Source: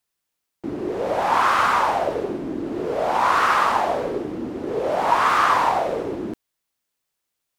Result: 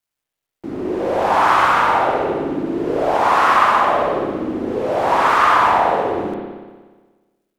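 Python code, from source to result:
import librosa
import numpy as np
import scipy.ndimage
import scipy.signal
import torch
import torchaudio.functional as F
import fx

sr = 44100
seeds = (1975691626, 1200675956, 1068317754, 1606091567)

y = fx.quant_dither(x, sr, seeds[0], bits=12, dither='none')
y = fx.rev_spring(y, sr, rt60_s=1.4, pass_ms=(60,), chirp_ms=55, drr_db=-2.5)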